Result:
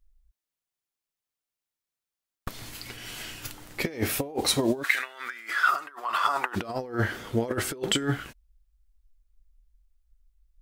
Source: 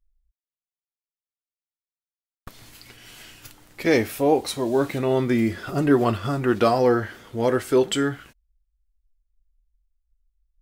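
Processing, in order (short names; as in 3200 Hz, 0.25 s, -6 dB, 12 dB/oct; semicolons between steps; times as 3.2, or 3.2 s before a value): negative-ratio compressor -26 dBFS, ratio -0.5; 4.82–6.55 resonant high-pass 1800 Hz -> 870 Hz, resonance Q 4.1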